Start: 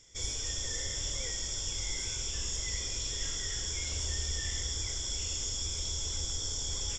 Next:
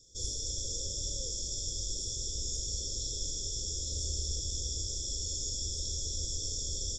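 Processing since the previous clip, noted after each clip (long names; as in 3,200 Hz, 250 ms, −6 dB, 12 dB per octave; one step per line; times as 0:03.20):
Chebyshev band-stop filter 580–3,600 Hz, order 5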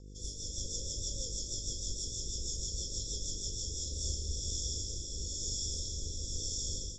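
automatic gain control gain up to 5.5 dB
hum with harmonics 50 Hz, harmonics 10, −43 dBFS −6 dB per octave
rotating-speaker cabinet horn 6.3 Hz, later 1 Hz, at 0:03.49
level −5.5 dB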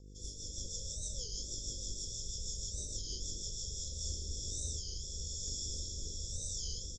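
auto-filter notch square 0.73 Hz 300–1,600 Hz
on a send: single-tap delay 575 ms −9 dB
on the sum: wow of a warped record 33 1/3 rpm, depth 160 cents
level −3.5 dB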